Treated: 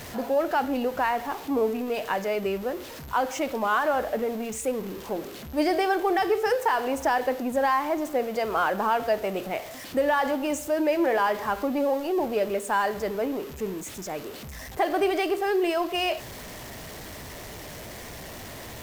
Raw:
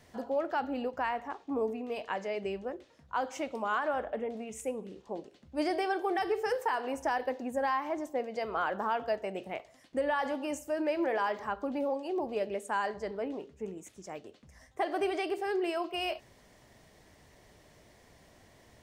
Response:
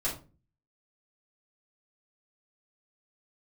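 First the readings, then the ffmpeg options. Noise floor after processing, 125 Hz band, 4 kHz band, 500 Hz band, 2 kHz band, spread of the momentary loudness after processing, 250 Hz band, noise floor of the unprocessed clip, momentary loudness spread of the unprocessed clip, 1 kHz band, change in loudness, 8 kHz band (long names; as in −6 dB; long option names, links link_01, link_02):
−40 dBFS, can't be measured, +8.5 dB, +7.5 dB, +7.5 dB, 15 LU, +8.0 dB, −61 dBFS, 11 LU, +7.5 dB, +7.5 dB, +12.0 dB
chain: -af "aeval=exprs='val(0)+0.5*0.0075*sgn(val(0))':channel_layout=same,aeval=exprs='val(0)+0.00112*sin(2*PI*12000*n/s)':channel_layout=same,volume=6.5dB"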